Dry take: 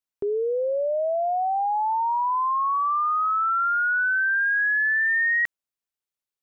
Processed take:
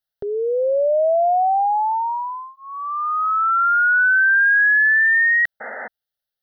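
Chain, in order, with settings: painted sound noise, 5.60–5.88 s, 210–2100 Hz -36 dBFS; static phaser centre 1.6 kHz, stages 8; trim +7.5 dB

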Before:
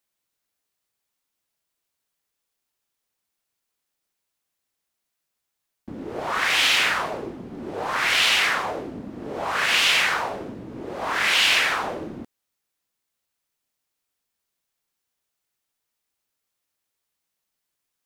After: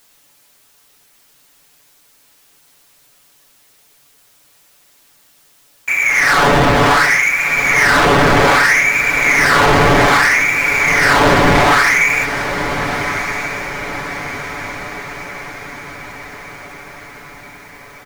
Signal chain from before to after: bass shelf 160 Hz -8.5 dB; frequency inversion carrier 2.6 kHz; in parallel at -2.5 dB: peak limiter -20 dBFS, peak gain reduction 9 dB; on the sum: waveshaping leveller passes 5; added noise white -53 dBFS; comb 7 ms; on a send: echo that smears into a reverb 1314 ms, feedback 55%, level -9 dB; on the sum: trim -1 dB

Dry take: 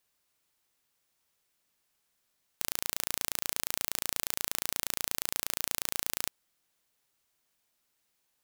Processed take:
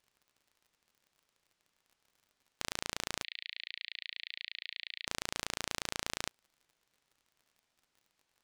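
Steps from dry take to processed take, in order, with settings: distance through air 79 m; crackle 50 per s -55 dBFS; 3.23–5.07 s: Chebyshev band-pass 1.9–4.4 kHz, order 4; trim +1.5 dB

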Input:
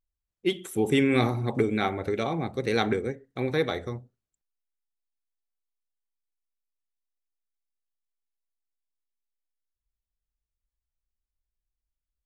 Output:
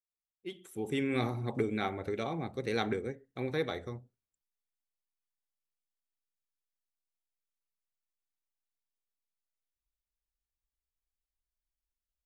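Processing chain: fade-in on the opening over 1.42 s; trim -7 dB

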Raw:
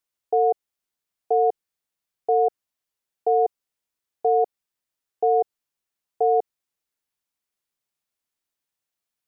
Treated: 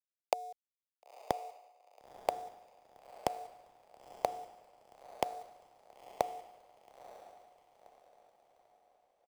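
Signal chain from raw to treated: tilt EQ +5 dB/octave; comb 4.1 ms, depth 97%; compression, threshold -23 dBFS, peak gain reduction 8.5 dB; resonant high-pass 600 Hz, resonance Q 5.3; small samples zeroed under -27 dBFS; inverted gate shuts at -24 dBFS, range -36 dB; echo that smears into a reverb 952 ms, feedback 54%, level -9 dB; three bands expanded up and down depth 40%; trim +6 dB

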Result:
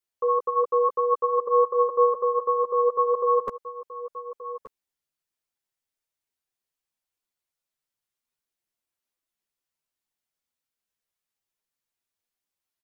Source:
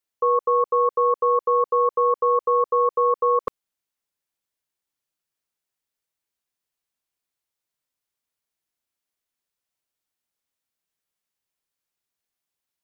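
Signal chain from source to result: chorus voices 6, 0.46 Hz, delay 11 ms, depth 3.4 ms; delay 1177 ms -13.5 dB

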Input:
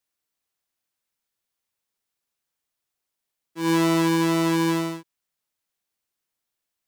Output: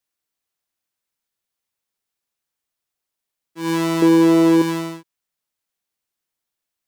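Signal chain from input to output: 4.02–4.62 s: peaking EQ 420 Hz +14 dB 1.1 oct

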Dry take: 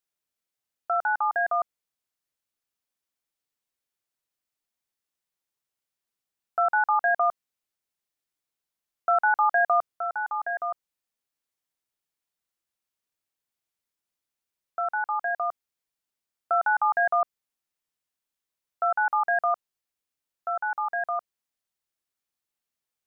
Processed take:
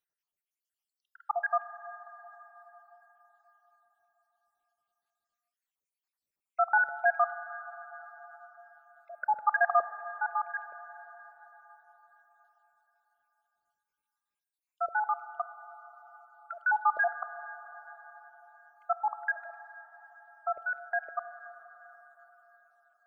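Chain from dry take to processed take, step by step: random holes in the spectrogram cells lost 74%; on a send: reverberation RT60 4.9 s, pre-delay 23 ms, DRR 11.5 dB

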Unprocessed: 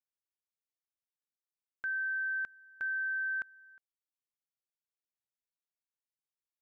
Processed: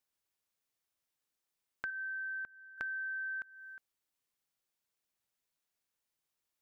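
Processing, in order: 1.90–2.78 s: low-pass 1.1 kHz 6 dB/octave; compression, threshold -47 dBFS, peak gain reduction 13 dB; trim +8 dB

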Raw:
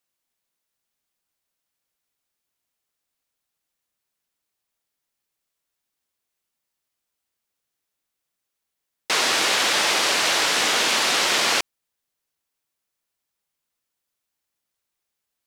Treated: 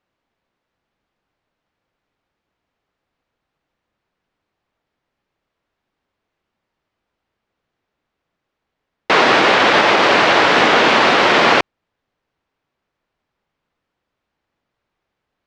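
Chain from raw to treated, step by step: tape spacing loss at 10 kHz 38 dB; loudness maximiser +17.5 dB; trim -1 dB

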